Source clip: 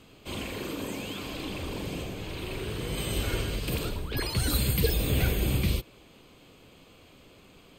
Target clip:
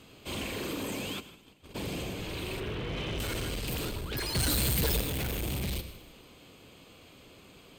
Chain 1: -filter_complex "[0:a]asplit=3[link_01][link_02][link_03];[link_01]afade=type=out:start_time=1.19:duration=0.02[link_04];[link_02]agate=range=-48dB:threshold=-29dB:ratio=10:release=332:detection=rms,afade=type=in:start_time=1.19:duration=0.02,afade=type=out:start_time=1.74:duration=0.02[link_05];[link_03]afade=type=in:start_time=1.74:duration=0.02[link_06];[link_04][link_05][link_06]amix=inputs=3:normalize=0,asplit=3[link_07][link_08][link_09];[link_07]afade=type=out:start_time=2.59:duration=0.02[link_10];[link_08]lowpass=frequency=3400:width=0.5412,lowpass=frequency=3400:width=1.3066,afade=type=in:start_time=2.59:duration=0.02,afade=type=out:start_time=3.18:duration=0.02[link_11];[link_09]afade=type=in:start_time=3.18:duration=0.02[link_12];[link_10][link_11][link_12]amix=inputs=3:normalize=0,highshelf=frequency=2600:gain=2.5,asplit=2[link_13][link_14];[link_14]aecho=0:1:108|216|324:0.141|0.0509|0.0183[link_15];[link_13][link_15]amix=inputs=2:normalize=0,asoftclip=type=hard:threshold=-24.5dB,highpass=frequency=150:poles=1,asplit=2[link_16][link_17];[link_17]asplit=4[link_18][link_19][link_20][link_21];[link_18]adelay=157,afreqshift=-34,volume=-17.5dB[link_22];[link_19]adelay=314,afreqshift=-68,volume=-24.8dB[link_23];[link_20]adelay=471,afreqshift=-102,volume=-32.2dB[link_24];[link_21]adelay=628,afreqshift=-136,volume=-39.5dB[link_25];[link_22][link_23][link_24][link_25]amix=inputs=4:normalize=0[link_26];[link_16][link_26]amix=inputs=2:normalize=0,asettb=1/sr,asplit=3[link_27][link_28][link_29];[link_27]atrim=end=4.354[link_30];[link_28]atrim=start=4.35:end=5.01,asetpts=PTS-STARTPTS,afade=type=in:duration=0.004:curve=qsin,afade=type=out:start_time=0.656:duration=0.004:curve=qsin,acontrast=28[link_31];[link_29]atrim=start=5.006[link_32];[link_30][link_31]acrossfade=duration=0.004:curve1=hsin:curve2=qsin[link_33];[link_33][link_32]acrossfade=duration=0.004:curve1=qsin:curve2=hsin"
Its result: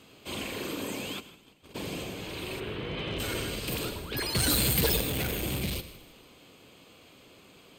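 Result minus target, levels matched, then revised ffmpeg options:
hard clipping: distortion −5 dB; 125 Hz band −2.5 dB
-filter_complex "[0:a]asplit=3[link_01][link_02][link_03];[link_01]afade=type=out:start_time=1.19:duration=0.02[link_04];[link_02]agate=range=-48dB:threshold=-29dB:ratio=10:release=332:detection=rms,afade=type=in:start_time=1.19:duration=0.02,afade=type=out:start_time=1.74:duration=0.02[link_05];[link_03]afade=type=in:start_time=1.74:duration=0.02[link_06];[link_04][link_05][link_06]amix=inputs=3:normalize=0,asplit=3[link_07][link_08][link_09];[link_07]afade=type=out:start_time=2.59:duration=0.02[link_10];[link_08]lowpass=frequency=3400:width=0.5412,lowpass=frequency=3400:width=1.3066,afade=type=in:start_time=2.59:duration=0.02,afade=type=out:start_time=3.18:duration=0.02[link_11];[link_09]afade=type=in:start_time=3.18:duration=0.02[link_12];[link_10][link_11][link_12]amix=inputs=3:normalize=0,highshelf=frequency=2600:gain=2.5,asplit=2[link_13][link_14];[link_14]aecho=0:1:108|216|324:0.141|0.0509|0.0183[link_15];[link_13][link_15]amix=inputs=2:normalize=0,asoftclip=type=hard:threshold=-30.5dB,highpass=frequency=38:poles=1,asplit=2[link_16][link_17];[link_17]asplit=4[link_18][link_19][link_20][link_21];[link_18]adelay=157,afreqshift=-34,volume=-17.5dB[link_22];[link_19]adelay=314,afreqshift=-68,volume=-24.8dB[link_23];[link_20]adelay=471,afreqshift=-102,volume=-32.2dB[link_24];[link_21]adelay=628,afreqshift=-136,volume=-39.5dB[link_25];[link_22][link_23][link_24][link_25]amix=inputs=4:normalize=0[link_26];[link_16][link_26]amix=inputs=2:normalize=0,asettb=1/sr,asplit=3[link_27][link_28][link_29];[link_27]atrim=end=4.354[link_30];[link_28]atrim=start=4.35:end=5.01,asetpts=PTS-STARTPTS,afade=type=in:duration=0.004:curve=qsin,afade=type=out:start_time=0.656:duration=0.004:curve=qsin,acontrast=28[link_31];[link_29]atrim=start=5.006[link_32];[link_30][link_31]acrossfade=duration=0.004:curve1=hsin:curve2=qsin[link_33];[link_33][link_32]acrossfade=duration=0.004:curve1=qsin:curve2=hsin"

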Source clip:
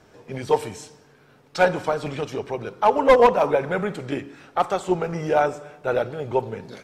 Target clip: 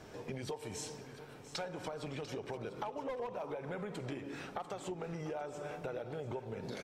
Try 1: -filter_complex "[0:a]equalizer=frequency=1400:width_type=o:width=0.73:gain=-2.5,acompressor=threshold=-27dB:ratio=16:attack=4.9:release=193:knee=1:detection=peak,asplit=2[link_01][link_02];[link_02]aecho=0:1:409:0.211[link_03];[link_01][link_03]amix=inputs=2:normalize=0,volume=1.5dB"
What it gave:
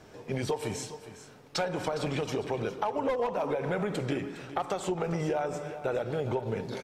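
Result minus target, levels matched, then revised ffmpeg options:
downward compressor: peak gain reduction −11 dB; echo 286 ms early
-filter_complex "[0:a]equalizer=frequency=1400:width_type=o:width=0.73:gain=-2.5,acompressor=threshold=-38.5dB:ratio=16:attack=4.9:release=193:knee=1:detection=peak,asplit=2[link_01][link_02];[link_02]aecho=0:1:695:0.211[link_03];[link_01][link_03]amix=inputs=2:normalize=0,volume=1.5dB"

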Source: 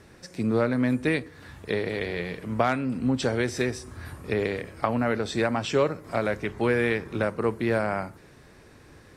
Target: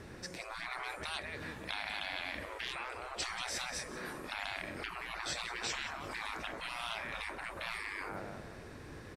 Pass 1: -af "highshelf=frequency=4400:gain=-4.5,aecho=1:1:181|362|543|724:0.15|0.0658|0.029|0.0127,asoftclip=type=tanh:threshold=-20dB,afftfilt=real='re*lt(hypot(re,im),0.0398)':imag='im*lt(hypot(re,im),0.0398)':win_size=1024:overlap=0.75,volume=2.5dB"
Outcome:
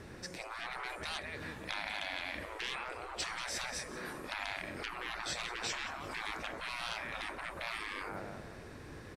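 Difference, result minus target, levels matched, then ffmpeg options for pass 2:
soft clipping: distortion +11 dB
-af "highshelf=frequency=4400:gain=-4.5,aecho=1:1:181|362|543|724:0.15|0.0658|0.029|0.0127,asoftclip=type=tanh:threshold=-12dB,afftfilt=real='re*lt(hypot(re,im),0.0398)':imag='im*lt(hypot(re,im),0.0398)':win_size=1024:overlap=0.75,volume=2.5dB"

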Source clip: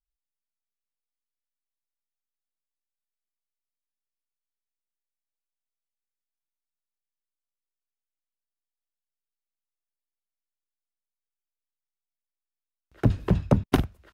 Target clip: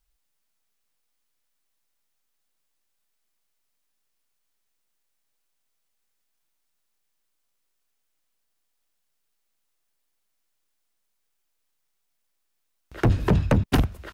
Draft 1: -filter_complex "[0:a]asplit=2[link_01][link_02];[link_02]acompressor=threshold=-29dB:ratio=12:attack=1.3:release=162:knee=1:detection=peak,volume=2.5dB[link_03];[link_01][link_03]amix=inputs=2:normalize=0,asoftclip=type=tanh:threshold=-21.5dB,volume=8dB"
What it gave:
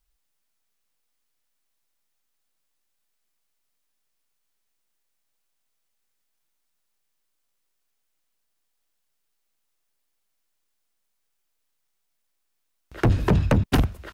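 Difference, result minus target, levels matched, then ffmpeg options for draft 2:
downward compressor: peak gain reduction −8.5 dB
-filter_complex "[0:a]asplit=2[link_01][link_02];[link_02]acompressor=threshold=-38.5dB:ratio=12:attack=1.3:release=162:knee=1:detection=peak,volume=2.5dB[link_03];[link_01][link_03]amix=inputs=2:normalize=0,asoftclip=type=tanh:threshold=-21.5dB,volume=8dB"

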